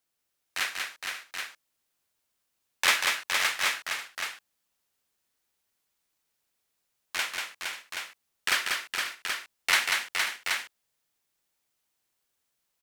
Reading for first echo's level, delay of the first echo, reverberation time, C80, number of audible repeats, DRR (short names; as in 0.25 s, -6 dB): -4.0 dB, 0.19 s, none, none, 4, none